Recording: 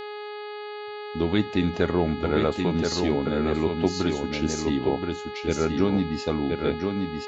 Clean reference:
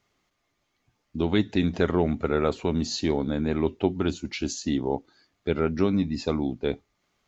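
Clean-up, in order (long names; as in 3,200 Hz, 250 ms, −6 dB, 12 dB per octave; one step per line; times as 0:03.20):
hum removal 417.9 Hz, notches 11
echo removal 1,025 ms −4.5 dB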